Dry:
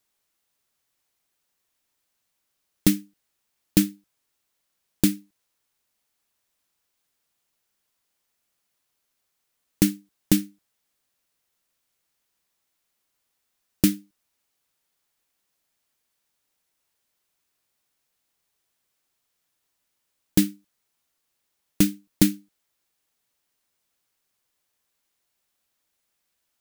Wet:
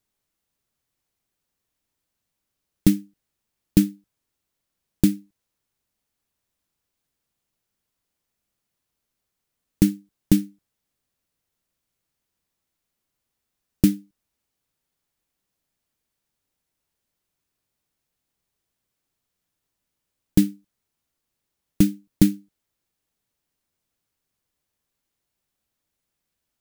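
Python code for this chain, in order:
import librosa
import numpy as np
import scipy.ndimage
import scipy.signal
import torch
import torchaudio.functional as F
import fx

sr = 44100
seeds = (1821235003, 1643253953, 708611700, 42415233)

y = fx.low_shelf(x, sr, hz=350.0, db=11.5)
y = F.gain(torch.from_numpy(y), -5.0).numpy()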